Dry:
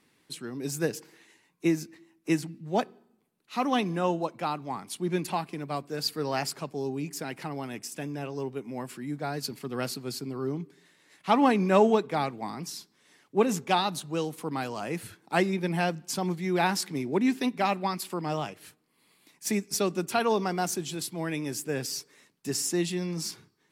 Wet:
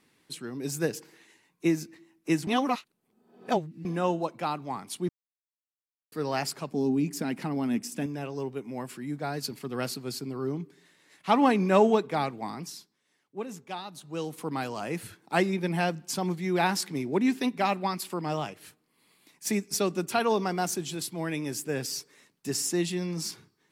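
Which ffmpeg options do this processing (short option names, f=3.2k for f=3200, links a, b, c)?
-filter_complex "[0:a]asettb=1/sr,asplit=3[a][b][c];[a]atrim=end=6.724[d];[b]atrim=start=6.72:end=8.06,asetpts=PTS-STARTPTS,afade=t=in:d=0.004:c=qsin,afade=t=out:st=1.336:d=0.004:c=qsin,equalizer=f=230:t=o:w=0.66:g=15[e];[c]atrim=start=8.056[f];[d][e]acrossfade=d=0.004:c1=hsin:c2=qsin[g];[g][f]acrossfade=d=0.004:c1=qsin:c2=hsin,asplit=7[h][i][j][k][l][m][n];[h]atrim=end=2.472[o];[i]atrim=start=2.468:end=3.852,asetpts=PTS-STARTPTS,areverse[p];[j]atrim=start=3.848:end=5.09,asetpts=PTS-STARTPTS,afade=t=out:st=1.238:d=0.004:c=hsin[q];[k]atrim=start=5.09:end=6.12,asetpts=PTS-STARTPTS,volume=0[r];[l]atrim=start=6.12:end=13.01,asetpts=PTS-STARTPTS,afade=t=in:d=0.004:c=hsin,afade=t=out:st=6.41:d=0.48:silence=0.237137[s];[m]atrim=start=13.01:end=13.93,asetpts=PTS-STARTPTS,volume=-12.5dB[t];[n]atrim=start=13.93,asetpts=PTS-STARTPTS,afade=t=in:d=0.48:silence=0.237137[u];[o][p]acrossfade=d=0.004:c1=hsin:c2=hsin[v];[q][r][s][t][u]concat=n=5:v=0:a=1[w];[v][w]acrossfade=d=0.004:c1=hsin:c2=hsin"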